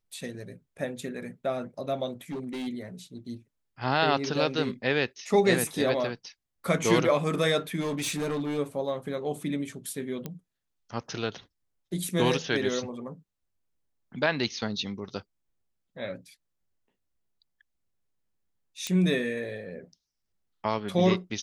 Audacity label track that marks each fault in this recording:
2.300000	2.680000	clipped -31 dBFS
7.800000	8.590000	clipped -26 dBFS
10.260000	10.260000	pop -20 dBFS
18.870000	18.870000	pop -16 dBFS

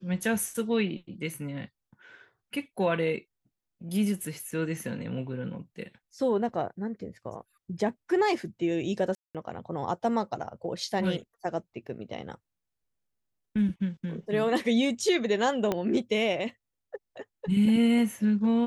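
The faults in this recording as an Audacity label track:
4.510000	4.510000	dropout 4.3 ms
9.150000	9.350000	dropout 197 ms
15.720000	15.720000	pop -14 dBFS

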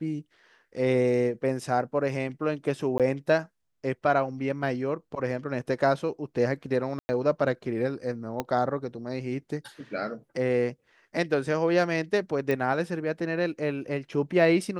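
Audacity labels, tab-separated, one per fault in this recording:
2.980000	3.000000	dropout 17 ms
6.990000	7.090000	dropout 100 ms
8.400000	8.400000	pop -14 dBFS
12.510000	12.510000	pop -16 dBFS

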